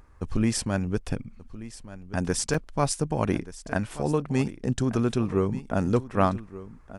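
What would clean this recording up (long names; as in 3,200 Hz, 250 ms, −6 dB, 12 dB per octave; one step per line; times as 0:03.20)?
repair the gap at 0:02.54, 3.9 ms
echo removal 1,181 ms −16 dB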